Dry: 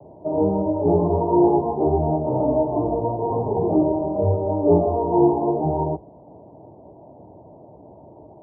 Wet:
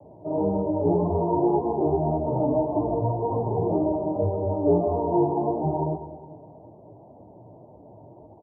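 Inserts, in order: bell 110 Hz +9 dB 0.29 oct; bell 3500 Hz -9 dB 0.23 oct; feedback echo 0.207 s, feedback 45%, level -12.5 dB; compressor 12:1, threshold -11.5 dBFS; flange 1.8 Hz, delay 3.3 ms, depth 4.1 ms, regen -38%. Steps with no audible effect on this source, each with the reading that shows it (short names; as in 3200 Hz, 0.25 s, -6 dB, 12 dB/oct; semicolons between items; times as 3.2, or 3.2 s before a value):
bell 3500 Hz: input band ends at 960 Hz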